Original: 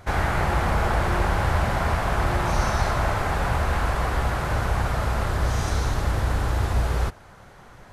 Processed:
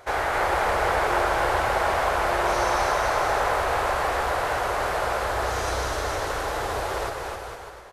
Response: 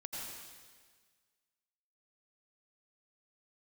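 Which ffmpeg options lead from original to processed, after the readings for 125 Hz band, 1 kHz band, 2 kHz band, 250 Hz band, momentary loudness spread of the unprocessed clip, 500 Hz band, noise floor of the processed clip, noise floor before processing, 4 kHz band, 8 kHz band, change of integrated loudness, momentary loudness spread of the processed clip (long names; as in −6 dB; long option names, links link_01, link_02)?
−12.5 dB, +3.5 dB, +2.5 dB, −6.0 dB, 2 LU, +4.5 dB, −39 dBFS, −48 dBFS, +2.5 dB, +2.0 dB, 0.0 dB, 6 LU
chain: -af "lowshelf=frequency=300:width_type=q:width=1.5:gain=-13.5,aecho=1:1:260|455|601.2|710.9|793.2:0.631|0.398|0.251|0.158|0.1"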